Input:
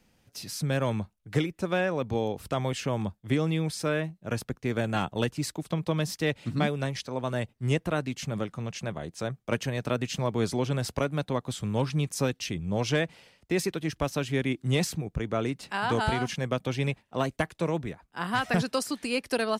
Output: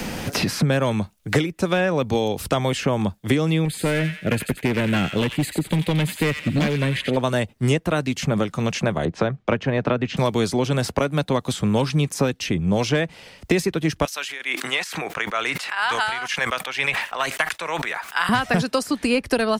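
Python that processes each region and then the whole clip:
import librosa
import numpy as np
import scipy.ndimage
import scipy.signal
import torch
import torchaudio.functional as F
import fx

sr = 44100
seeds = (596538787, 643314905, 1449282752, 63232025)

y = fx.chain(x, sr, fx.fixed_phaser(hz=2400.0, stages=4),
    fx.overload_stage(gain_db=26.5),
    fx.echo_wet_highpass(ms=88, feedback_pct=37, hz=1800.0, wet_db=-5), at=(3.65, 7.17))
y = fx.chain(y, sr, fx.lowpass(hz=1600.0, slope=12),
    fx.band_squash(depth_pct=40), at=(9.05, 10.17))
y = fx.chain(y, sr, fx.highpass(hz=1400.0, slope=12),
    fx.tremolo_shape(shape='triangle', hz=2.2, depth_pct=95),
    fx.sustainer(db_per_s=61.0), at=(14.05, 18.29))
y = fx.peak_eq(y, sr, hz=120.0, db=-3.5, octaves=0.38)
y = fx.band_squash(y, sr, depth_pct=100)
y = y * 10.0 ** (8.0 / 20.0)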